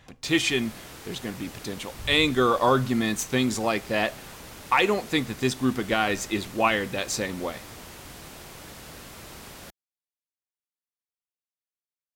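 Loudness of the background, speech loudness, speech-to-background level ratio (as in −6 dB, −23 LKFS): −42.5 LKFS, −25.0 LKFS, 17.5 dB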